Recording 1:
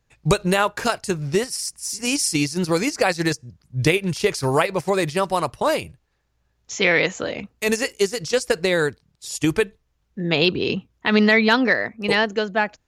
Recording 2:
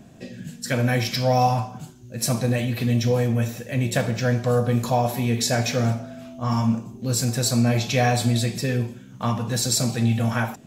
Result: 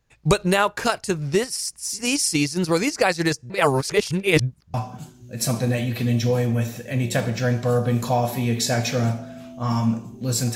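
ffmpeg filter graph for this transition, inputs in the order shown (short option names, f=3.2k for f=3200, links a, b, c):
-filter_complex "[0:a]apad=whole_dur=10.55,atrim=end=10.55,asplit=2[a][b];[a]atrim=end=3.502[c];[b]atrim=start=3.498:end=4.742,asetpts=PTS-STARTPTS,areverse[d];[1:a]atrim=start=1.548:end=7.36[e];[c][d]acrossfade=d=0.004:c1=hsin:c2=hsin[f];[f][e]acrossfade=d=0.004:c1=hsin:c2=hsin"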